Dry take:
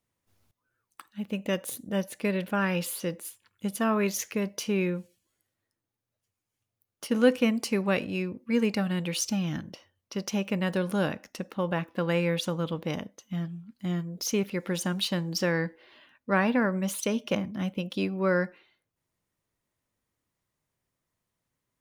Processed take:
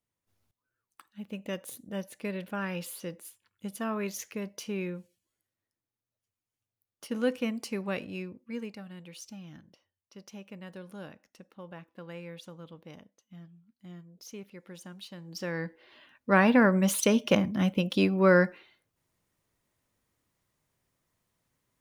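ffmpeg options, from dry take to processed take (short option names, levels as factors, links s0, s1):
-af "volume=5.01,afade=t=out:st=8.19:d=0.58:silence=0.334965,afade=t=in:st=15.17:d=0.37:silence=0.334965,afade=t=in:st=15.54:d=1.14:silence=0.266073"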